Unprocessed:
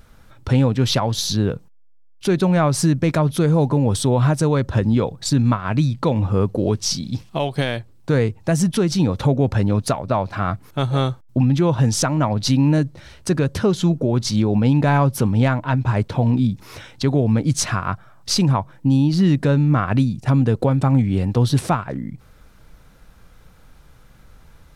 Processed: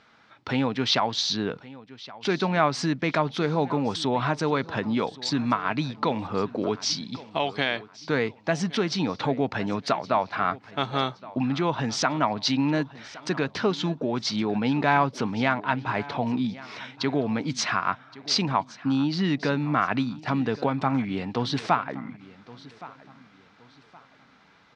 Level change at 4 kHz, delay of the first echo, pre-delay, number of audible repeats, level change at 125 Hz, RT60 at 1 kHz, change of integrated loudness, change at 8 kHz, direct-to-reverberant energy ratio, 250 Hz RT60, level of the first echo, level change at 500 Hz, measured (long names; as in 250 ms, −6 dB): −1.5 dB, 1,119 ms, no reverb audible, 2, −14.5 dB, no reverb audible, −7.0 dB, −9.5 dB, no reverb audible, no reverb audible, −19.0 dB, −5.5 dB